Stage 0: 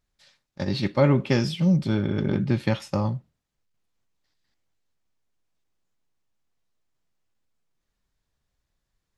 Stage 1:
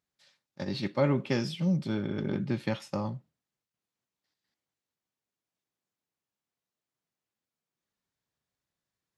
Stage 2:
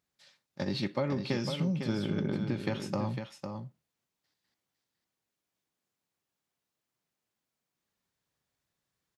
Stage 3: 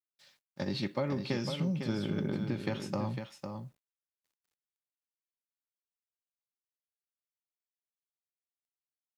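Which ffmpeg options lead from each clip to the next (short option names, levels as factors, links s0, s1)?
-af "highpass=130,volume=0.501"
-af "acompressor=threshold=0.0282:ratio=6,aecho=1:1:503:0.447,volume=1.41"
-af "acrusher=bits=11:mix=0:aa=0.000001,volume=0.841"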